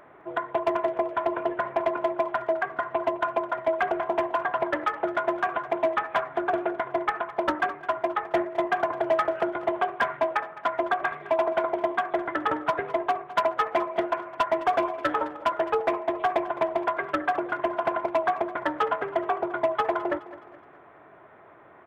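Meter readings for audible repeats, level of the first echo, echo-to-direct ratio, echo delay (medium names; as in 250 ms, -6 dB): 3, -17.0 dB, -16.0 dB, 210 ms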